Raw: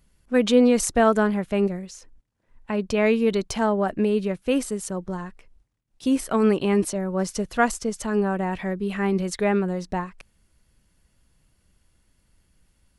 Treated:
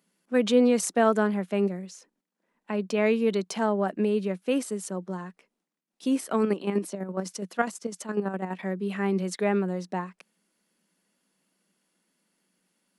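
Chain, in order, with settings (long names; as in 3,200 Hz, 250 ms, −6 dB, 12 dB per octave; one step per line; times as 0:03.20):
0:06.42–0:08.63: square-wave tremolo 12 Hz, depth 60%, duty 35%
elliptic high-pass filter 180 Hz, stop band 40 dB
level −3 dB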